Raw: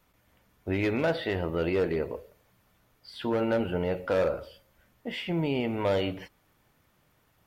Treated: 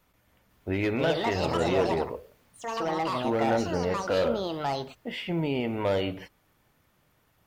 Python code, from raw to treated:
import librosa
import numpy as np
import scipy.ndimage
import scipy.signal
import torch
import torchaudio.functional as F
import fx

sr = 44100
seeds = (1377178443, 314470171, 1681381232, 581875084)

y = fx.echo_pitch(x, sr, ms=508, semitones=6, count=2, db_per_echo=-3.0)